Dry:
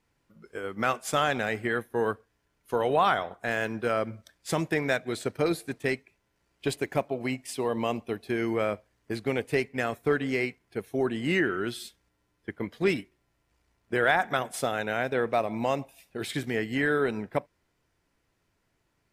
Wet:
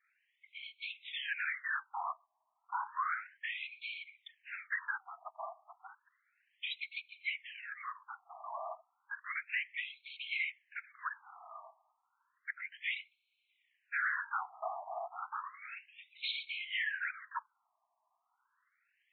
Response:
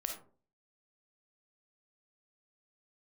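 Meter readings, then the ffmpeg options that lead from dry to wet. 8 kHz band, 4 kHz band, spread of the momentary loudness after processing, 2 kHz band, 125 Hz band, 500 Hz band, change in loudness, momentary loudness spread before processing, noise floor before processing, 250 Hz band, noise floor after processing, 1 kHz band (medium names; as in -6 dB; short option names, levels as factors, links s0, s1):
under -35 dB, -5.0 dB, 14 LU, -6.5 dB, under -40 dB, -26.0 dB, -10.5 dB, 11 LU, -75 dBFS, under -40 dB, -82 dBFS, -10.5 dB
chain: -filter_complex "[0:a]lowshelf=f=470:g=-9,acrossover=split=380|890[s0][s1][s2];[s0]acompressor=threshold=0.00316:ratio=4[s3];[s1]acompressor=threshold=0.00631:ratio=4[s4];[s2]acompressor=threshold=0.0178:ratio=4[s5];[s3][s4][s5]amix=inputs=3:normalize=0,afftfilt=real='hypot(re,im)*cos(2*PI*random(0))':imag='hypot(re,im)*sin(2*PI*random(1))':win_size=512:overlap=0.75,aresample=11025,asoftclip=type=tanh:threshold=0.0133,aresample=44100,afftfilt=real='re*between(b*sr/1024,850*pow(3100/850,0.5+0.5*sin(2*PI*0.32*pts/sr))/1.41,850*pow(3100/850,0.5+0.5*sin(2*PI*0.32*pts/sr))*1.41)':imag='im*between(b*sr/1024,850*pow(3100/850,0.5+0.5*sin(2*PI*0.32*pts/sr))/1.41,850*pow(3100/850,0.5+0.5*sin(2*PI*0.32*pts/sr))*1.41)':win_size=1024:overlap=0.75,volume=3.76"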